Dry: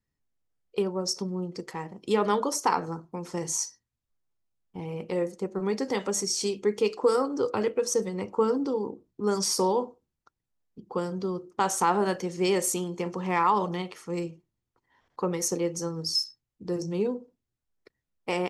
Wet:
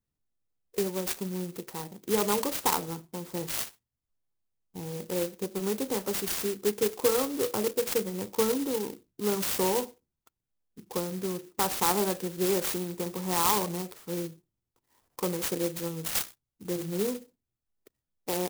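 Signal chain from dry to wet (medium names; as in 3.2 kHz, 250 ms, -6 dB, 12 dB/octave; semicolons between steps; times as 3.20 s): sampling jitter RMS 0.13 ms; trim -2 dB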